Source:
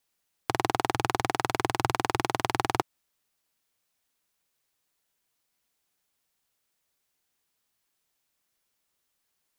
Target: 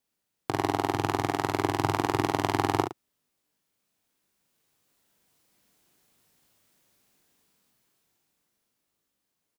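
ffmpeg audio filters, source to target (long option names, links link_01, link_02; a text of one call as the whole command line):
ffmpeg -i in.wav -filter_complex "[0:a]equalizer=frequency=210:width_type=o:width=2.6:gain=9.5,dynaudnorm=framelen=240:gausssize=17:maxgain=13.5dB,asplit=2[link_01][link_02];[link_02]adelay=40,volume=-6dB[link_03];[link_01][link_03]amix=inputs=2:normalize=0,asplit=2[link_04][link_05];[link_05]aecho=0:1:20|71:0.237|0.299[link_06];[link_04][link_06]amix=inputs=2:normalize=0,volume=-5.5dB" out.wav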